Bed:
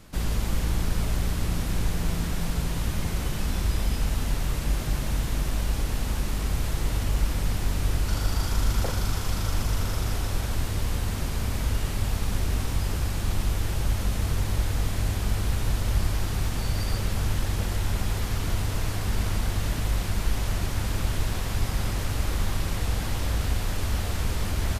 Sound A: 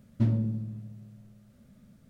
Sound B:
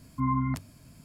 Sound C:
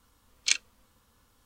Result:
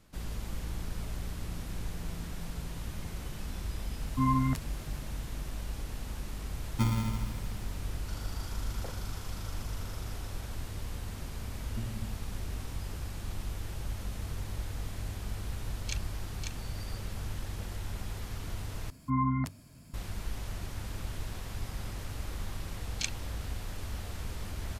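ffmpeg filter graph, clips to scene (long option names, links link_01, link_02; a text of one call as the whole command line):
ffmpeg -i bed.wav -i cue0.wav -i cue1.wav -i cue2.wav -filter_complex "[2:a]asplit=2[link_01][link_02];[1:a]asplit=2[link_03][link_04];[3:a]asplit=2[link_05][link_06];[0:a]volume=-11.5dB[link_07];[link_03]acrusher=samples=39:mix=1:aa=0.000001[link_08];[link_05]aecho=1:1:544:0.596[link_09];[link_07]asplit=2[link_10][link_11];[link_10]atrim=end=18.904[link_12];[link_02]atrim=end=1.04,asetpts=PTS-STARTPTS,volume=-1.5dB[link_13];[link_11]atrim=start=19.936[link_14];[link_01]atrim=end=1.04,asetpts=PTS-STARTPTS,afade=type=in:duration=0.004:curve=hsin,afade=type=out:start_time=1.036:duration=0.004:curve=hsin,adelay=3990[link_15];[link_08]atrim=end=2.09,asetpts=PTS-STARTPTS,volume=-3.5dB,afade=type=in:duration=0.004:curve=hsin,afade=type=out:start_time=2.086:duration=0.004:curve=hsin,adelay=6590[link_16];[link_04]atrim=end=2.09,asetpts=PTS-STARTPTS,volume=-14dB,afade=type=in:duration=0.004:curve=hsin,afade=type=out:start_time=2.086:duration=0.004:curve=hsin,adelay=11560[link_17];[link_09]atrim=end=1.45,asetpts=PTS-STARTPTS,volume=-14.5dB,afade=type=in:duration=0.004:curve=hsin,afade=type=out:start_time=1.446:duration=0.004:curve=hsin,adelay=15410[link_18];[link_06]atrim=end=1.45,asetpts=PTS-STARTPTS,volume=-9.5dB,afade=type=in:duration=0.004:curve=hsin,afade=type=out:start_time=1.446:duration=0.004:curve=hsin,adelay=22530[link_19];[link_12][link_13]acrossfade=duration=0.004:curve1=hsin:curve2=hsin[link_20];[link_20][link_14]acrossfade=duration=0.004:curve1=hsin:curve2=hsin[link_21];[link_21][link_15][link_16][link_17][link_18][link_19]amix=inputs=6:normalize=0" out.wav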